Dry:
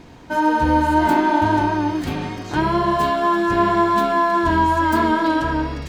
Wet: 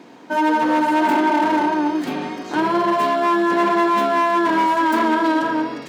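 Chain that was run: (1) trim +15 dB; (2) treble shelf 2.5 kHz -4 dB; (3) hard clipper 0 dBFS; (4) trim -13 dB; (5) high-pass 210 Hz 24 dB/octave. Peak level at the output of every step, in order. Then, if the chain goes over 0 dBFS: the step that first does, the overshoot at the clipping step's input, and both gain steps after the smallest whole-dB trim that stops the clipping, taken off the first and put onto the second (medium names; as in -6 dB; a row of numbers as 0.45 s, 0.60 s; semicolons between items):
+9.5 dBFS, +9.0 dBFS, 0.0 dBFS, -13.0 dBFS, -7.0 dBFS; step 1, 9.0 dB; step 1 +6 dB, step 4 -4 dB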